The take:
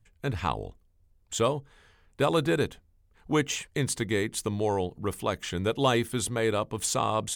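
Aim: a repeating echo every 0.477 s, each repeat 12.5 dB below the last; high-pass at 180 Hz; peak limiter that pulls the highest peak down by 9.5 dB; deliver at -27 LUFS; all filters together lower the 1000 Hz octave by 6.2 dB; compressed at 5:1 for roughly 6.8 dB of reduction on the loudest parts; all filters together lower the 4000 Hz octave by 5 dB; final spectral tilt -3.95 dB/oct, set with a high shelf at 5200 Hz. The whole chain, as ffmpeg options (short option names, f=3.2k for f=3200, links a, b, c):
-af "highpass=180,equalizer=f=1k:t=o:g=-7.5,equalizer=f=4k:t=o:g=-3,highshelf=f=5.2k:g=-7.5,acompressor=threshold=-30dB:ratio=5,alimiter=level_in=3dB:limit=-24dB:level=0:latency=1,volume=-3dB,aecho=1:1:477|954|1431:0.237|0.0569|0.0137,volume=12dB"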